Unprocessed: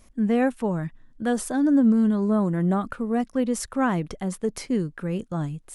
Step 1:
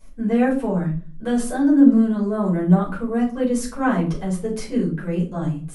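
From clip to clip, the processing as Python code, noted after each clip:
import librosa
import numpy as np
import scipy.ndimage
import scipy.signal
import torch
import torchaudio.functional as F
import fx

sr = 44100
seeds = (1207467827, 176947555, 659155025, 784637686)

y = fx.room_shoebox(x, sr, seeds[0], volume_m3=230.0, walls='furnished', distance_m=5.0)
y = F.gain(torch.from_numpy(y), -7.5).numpy()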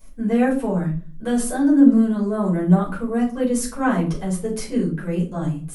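y = fx.high_shelf(x, sr, hz=10000.0, db=12.0)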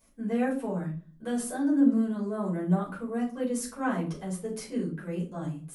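y = fx.highpass(x, sr, hz=130.0, slope=6)
y = F.gain(torch.from_numpy(y), -8.5).numpy()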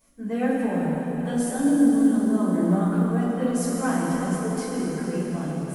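y = fx.rev_plate(x, sr, seeds[1], rt60_s=4.9, hf_ratio=0.9, predelay_ms=0, drr_db=-3.5)
y = fx.quant_float(y, sr, bits=6)
y = F.gain(torch.from_numpy(y), 1.0).numpy()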